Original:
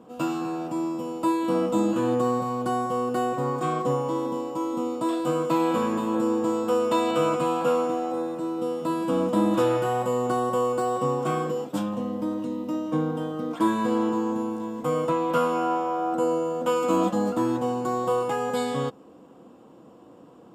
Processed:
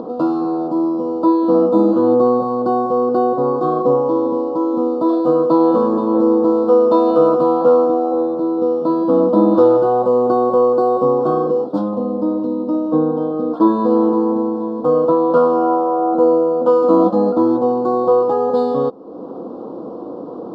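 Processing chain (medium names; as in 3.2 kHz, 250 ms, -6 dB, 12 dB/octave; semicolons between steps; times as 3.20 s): upward compressor, threshold -28 dBFS; FFT filter 130 Hz 0 dB, 210 Hz +7 dB, 430 Hz +13 dB, 1.3 kHz +5 dB, 2.2 kHz -26 dB, 4.3 kHz +2 dB, 7.5 kHz -22 dB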